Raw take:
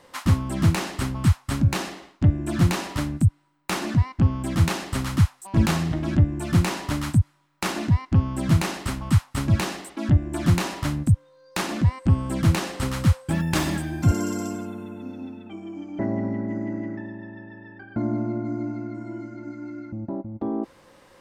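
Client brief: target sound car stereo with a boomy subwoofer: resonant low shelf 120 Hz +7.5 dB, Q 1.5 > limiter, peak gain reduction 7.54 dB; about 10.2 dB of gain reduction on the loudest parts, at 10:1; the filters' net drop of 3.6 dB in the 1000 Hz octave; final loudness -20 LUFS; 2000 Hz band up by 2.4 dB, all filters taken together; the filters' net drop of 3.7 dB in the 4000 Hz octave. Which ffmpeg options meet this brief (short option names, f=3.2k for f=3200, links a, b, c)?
-af "equalizer=f=1k:t=o:g=-6,equalizer=f=2k:t=o:g=6.5,equalizer=f=4k:t=o:g=-7,acompressor=threshold=-23dB:ratio=10,lowshelf=f=120:t=q:w=1.5:g=7.5,volume=10dB,alimiter=limit=-8.5dB:level=0:latency=1"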